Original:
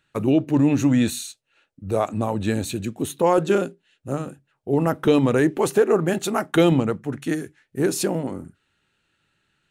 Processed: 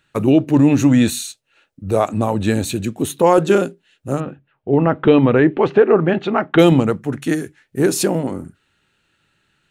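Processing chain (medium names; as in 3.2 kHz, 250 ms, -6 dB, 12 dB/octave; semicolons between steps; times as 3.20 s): 4.20–6.59 s: low-pass 3.2 kHz 24 dB/octave; trim +5.5 dB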